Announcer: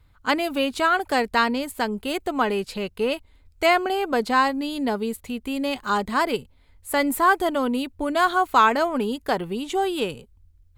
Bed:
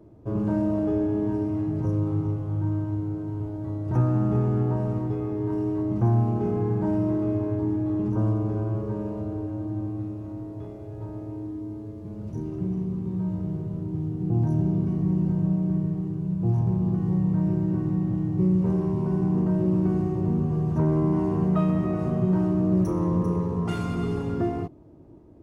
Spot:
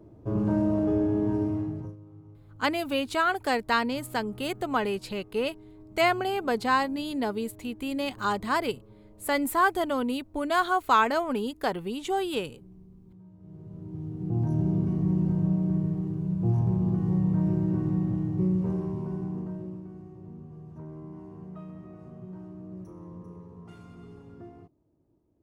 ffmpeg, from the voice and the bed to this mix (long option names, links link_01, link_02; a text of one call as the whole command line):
ffmpeg -i stem1.wav -i stem2.wav -filter_complex "[0:a]adelay=2350,volume=-4.5dB[link_01];[1:a]volume=21.5dB,afade=type=out:start_time=1.46:duration=0.5:silence=0.0707946,afade=type=in:start_time=13.38:duration=1.38:silence=0.0794328,afade=type=out:start_time=17.97:duration=1.89:silence=0.11885[link_02];[link_01][link_02]amix=inputs=2:normalize=0" out.wav